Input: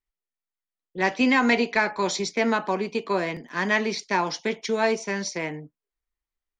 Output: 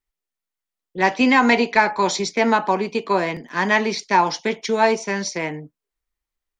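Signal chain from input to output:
dynamic equaliser 880 Hz, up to +6 dB, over −38 dBFS, Q 3.3
level +4 dB

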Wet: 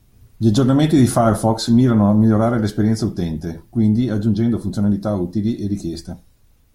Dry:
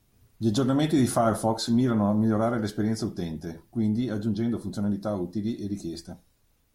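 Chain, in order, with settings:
low-shelf EQ 170 Hz +8 dB
level +6.5 dB

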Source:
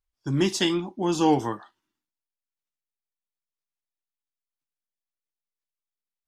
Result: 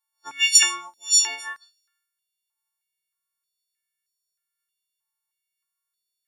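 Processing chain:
every partial snapped to a pitch grid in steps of 4 semitones
0:00.55–0:01.27: high shelf with overshoot 5,000 Hz +6.5 dB, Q 3
high-pass on a step sequencer 3.2 Hz 930–5,000 Hz
level −3 dB

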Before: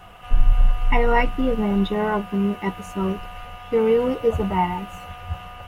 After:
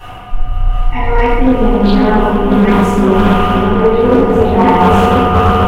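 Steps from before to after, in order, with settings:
reversed playback
downward compressor 10 to 1, threshold −30 dBFS, peak gain reduction 22 dB
reversed playback
echo whose low-pass opens from repeat to repeat 519 ms, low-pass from 400 Hz, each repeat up 1 octave, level −3 dB
convolution reverb RT60 1.7 s, pre-delay 3 ms, DRR −13.5 dB
gain into a clipping stage and back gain 7.5 dB
highs frequency-modulated by the lows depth 0.28 ms
level +6 dB

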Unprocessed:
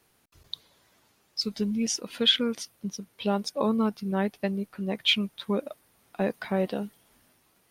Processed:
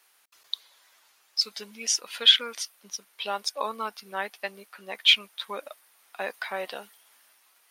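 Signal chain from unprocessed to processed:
high-pass filter 990 Hz 12 dB per octave
level +5 dB

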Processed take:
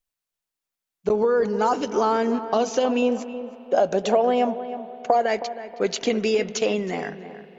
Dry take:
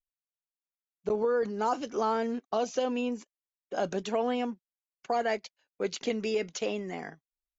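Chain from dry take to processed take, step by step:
0:03.02–0:05.26: parametric band 610 Hz +10.5 dB 0.96 octaves
downward compressor, threshold −25 dBFS, peak gain reduction 9 dB
feedback echo with a low-pass in the loop 318 ms, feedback 32%, low-pass 1,800 Hz, level −12 dB
convolution reverb RT60 4.2 s, pre-delay 43 ms, DRR 16.5 dB
level +9 dB

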